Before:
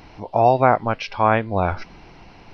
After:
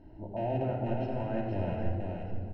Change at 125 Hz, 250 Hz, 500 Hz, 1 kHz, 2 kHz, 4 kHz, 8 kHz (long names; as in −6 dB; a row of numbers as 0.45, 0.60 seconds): −6.5 dB, −7.5 dB, −13.5 dB, −20.5 dB, −21.0 dB, −18.0 dB, can't be measured